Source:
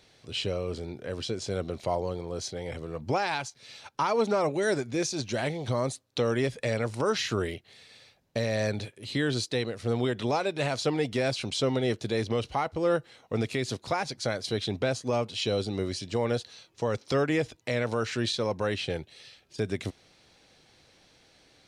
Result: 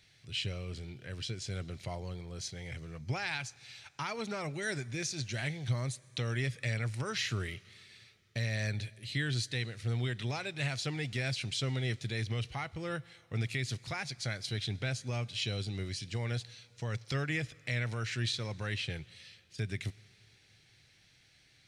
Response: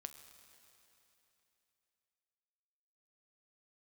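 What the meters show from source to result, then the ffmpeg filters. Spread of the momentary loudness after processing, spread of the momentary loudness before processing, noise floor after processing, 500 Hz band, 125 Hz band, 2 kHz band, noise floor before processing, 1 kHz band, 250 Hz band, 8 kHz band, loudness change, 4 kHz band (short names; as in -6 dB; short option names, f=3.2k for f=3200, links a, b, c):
9 LU, 8 LU, -65 dBFS, -15.0 dB, -0.5 dB, -2.5 dB, -63 dBFS, -12.0 dB, -10.0 dB, -4.0 dB, -6.5 dB, -3.5 dB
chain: -filter_complex "[0:a]equalizer=f=125:t=o:w=1:g=7,equalizer=f=250:t=o:w=1:g=-6,equalizer=f=500:t=o:w=1:g=-9,equalizer=f=1k:t=o:w=1:g=-8,equalizer=f=2k:t=o:w=1:g=6,asplit=2[a][b];[1:a]atrim=start_sample=2205,highshelf=f=6.3k:g=8[c];[b][c]afir=irnorm=-1:irlink=0,volume=-6.5dB[d];[a][d]amix=inputs=2:normalize=0,volume=-7dB"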